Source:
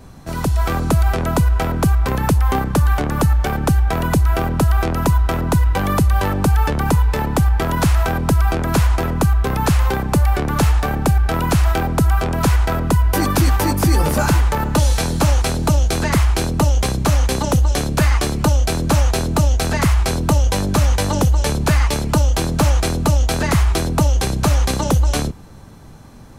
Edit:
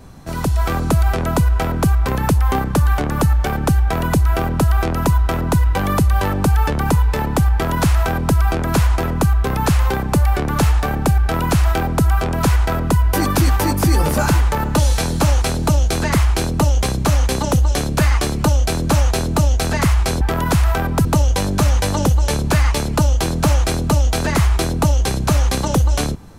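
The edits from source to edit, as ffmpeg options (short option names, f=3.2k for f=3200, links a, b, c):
-filter_complex "[0:a]asplit=3[a][b][c];[a]atrim=end=20.212[d];[b]atrim=start=7.518:end=8.362[e];[c]atrim=start=20.208[f];[d][e]acrossfade=d=0.004:c1=hsin:c2=hsin[g];[g][f]acrossfade=d=0.004:c1=hsin:c2=hsin"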